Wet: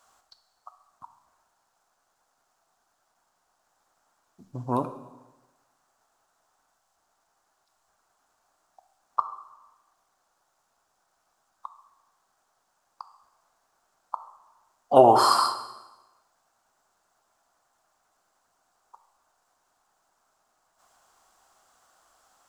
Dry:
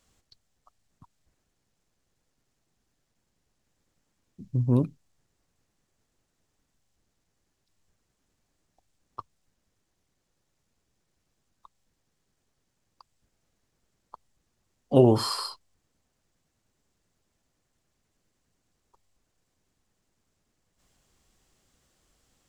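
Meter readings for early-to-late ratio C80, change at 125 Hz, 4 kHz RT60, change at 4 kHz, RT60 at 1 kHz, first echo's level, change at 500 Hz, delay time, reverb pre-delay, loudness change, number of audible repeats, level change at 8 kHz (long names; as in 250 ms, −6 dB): 13.0 dB, −11.5 dB, 1.0 s, +3.5 dB, 1.1 s, no echo audible, +3.5 dB, no echo audible, 7 ms, +2.0 dB, no echo audible, +5.0 dB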